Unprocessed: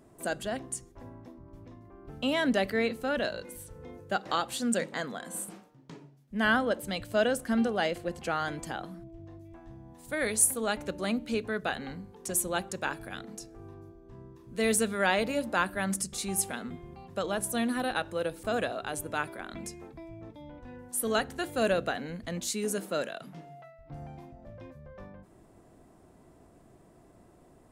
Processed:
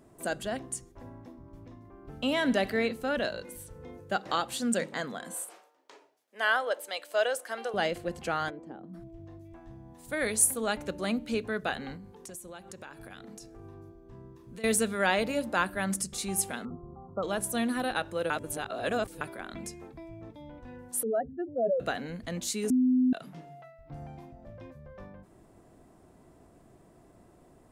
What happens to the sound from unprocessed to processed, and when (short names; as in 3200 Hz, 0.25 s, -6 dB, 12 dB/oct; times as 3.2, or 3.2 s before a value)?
0.89–2.86 feedback echo 65 ms, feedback 58%, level -18 dB
5.34–7.74 HPF 470 Hz 24 dB/oct
8.49–8.93 band-pass 520 Hz -> 200 Hz, Q 1.6
11.96–14.64 compressor 5:1, threshold -42 dBFS
16.65–17.23 brick-wall FIR low-pass 1400 Hz
18.3–19.21 reverse
21.03–21.8 spectral contrast raised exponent 3.9
22.7–23.13 bleep 254 Hz -20.5 dBFS